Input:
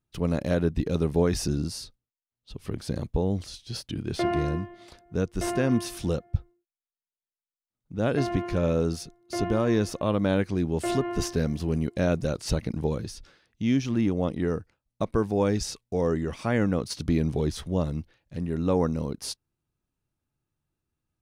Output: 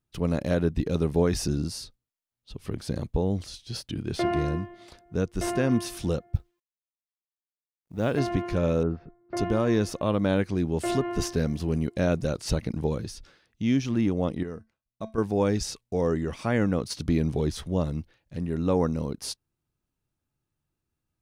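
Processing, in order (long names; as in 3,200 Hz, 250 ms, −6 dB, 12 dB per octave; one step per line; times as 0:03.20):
0:06.35–0:08.19: mu-law and A-law mismatch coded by A
0:08.83–0:09.37: low-pass filter 1,800 Hz 24 dB per octave
0:14.43–0:15.18: tuned comb filter 220 Hz, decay 0.24 s, harmonics odd, mix 70%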